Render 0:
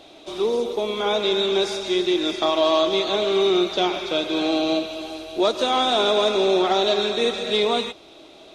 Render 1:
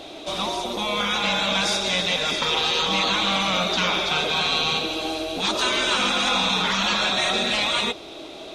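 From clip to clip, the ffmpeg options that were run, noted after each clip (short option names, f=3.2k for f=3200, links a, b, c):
-af "afftfilt=real='re*lt(hypot(re,im),0.178)':imag='im*lt(hypot(re,im),0.178)':win_size=1024:overlap=0.75,volume=8dB"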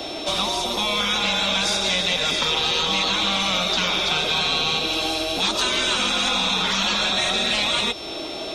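-filter_complex "[0:a]aeval=exprs='val(0)+0.00631*sin(2*PI*5400*n/s)':c=same,acrossover=split=88|200|700|2800[a][b][c][d][e];[a]acompressor=threshold=-49dB:ratio=4[f];[b]acompressor=threshold=-48dB:ratio=4[g];[c]acompressor=threshold=-40dB:ratio=4[h];[d]acompressor=threshold=-36dB:ratio=4[i];[e]acompressor=threshold=-30dB:ratio=4[j];[f][g][h][i][j]amix=inputs=5:normalize=0,volume=7.5dB"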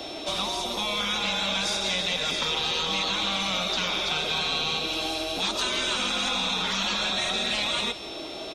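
-af "aecho=1:1:169:0.158,volume=-5.5dB"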